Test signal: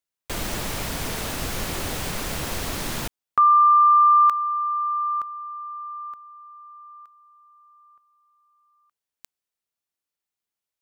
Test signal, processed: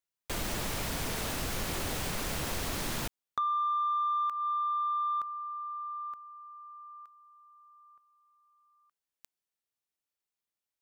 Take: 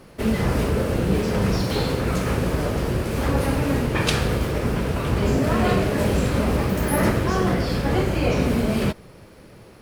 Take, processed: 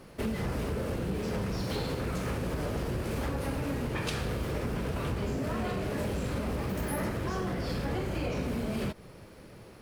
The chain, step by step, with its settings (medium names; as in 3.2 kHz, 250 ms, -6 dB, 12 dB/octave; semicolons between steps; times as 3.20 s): compression 12:1, threshold -23 dBFS; saturation -19 dBFS; trim -4 dB